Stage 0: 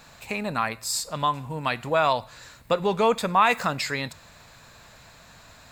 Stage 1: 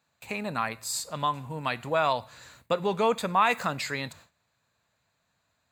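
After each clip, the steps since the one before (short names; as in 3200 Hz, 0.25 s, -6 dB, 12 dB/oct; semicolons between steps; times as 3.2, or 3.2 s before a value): HPF 63 Hz 24 dB/oct; notch 5300 Hz, Q 9.8; gate with hold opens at -37 dBFS; gain -3.5 dB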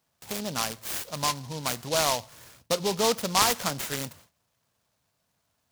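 noise-modulated delay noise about 4300 Hz, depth 0.13 ms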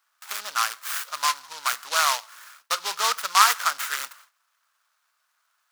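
resonant high-pass 1300 Hz, resonance Q 3.4; gain +2 dB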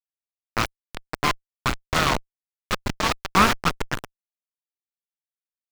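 level-crossing sampler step -16 dBFS; added harmonics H 4 -8 dB, 6 -13 dB, 8 -13 dB, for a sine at -1 dBFS; slew limiter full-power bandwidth 540 Hz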